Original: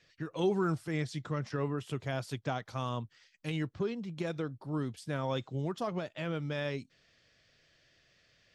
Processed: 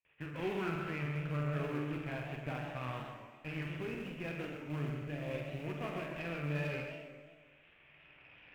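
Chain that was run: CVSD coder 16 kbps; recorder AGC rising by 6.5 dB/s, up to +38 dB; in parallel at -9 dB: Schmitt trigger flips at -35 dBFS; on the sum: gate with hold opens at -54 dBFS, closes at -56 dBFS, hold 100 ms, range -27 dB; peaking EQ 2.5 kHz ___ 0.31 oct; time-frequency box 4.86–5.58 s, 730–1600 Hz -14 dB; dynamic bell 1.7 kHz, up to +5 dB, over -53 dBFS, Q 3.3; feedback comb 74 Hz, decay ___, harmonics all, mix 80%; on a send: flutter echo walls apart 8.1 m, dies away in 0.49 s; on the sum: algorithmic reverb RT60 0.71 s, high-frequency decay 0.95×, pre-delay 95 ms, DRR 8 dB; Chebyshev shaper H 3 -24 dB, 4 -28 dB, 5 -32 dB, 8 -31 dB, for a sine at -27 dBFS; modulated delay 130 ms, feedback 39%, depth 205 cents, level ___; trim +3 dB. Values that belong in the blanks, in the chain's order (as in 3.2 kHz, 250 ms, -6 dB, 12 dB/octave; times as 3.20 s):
+11.5 dB, 1.6 s, -8 dB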